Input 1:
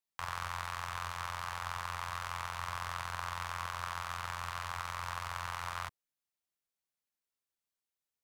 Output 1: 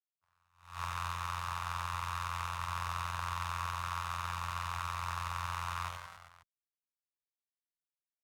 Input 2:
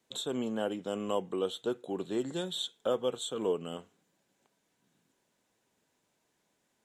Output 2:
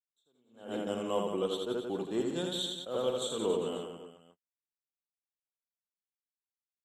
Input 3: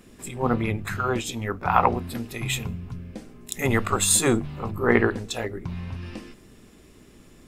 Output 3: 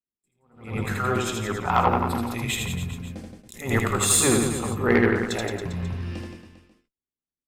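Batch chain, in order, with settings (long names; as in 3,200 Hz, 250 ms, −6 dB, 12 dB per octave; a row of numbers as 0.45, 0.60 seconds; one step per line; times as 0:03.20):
noise gate −40 dBFS, range −51 dB
reverse bouncing-ball delay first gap 80 ms, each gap 1.15×, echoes 5
tube saturation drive 7 dB, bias 0.25
level that may rise only so fast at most 130 dB per second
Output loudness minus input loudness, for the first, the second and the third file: +1.5, +0.5, +0.5 LU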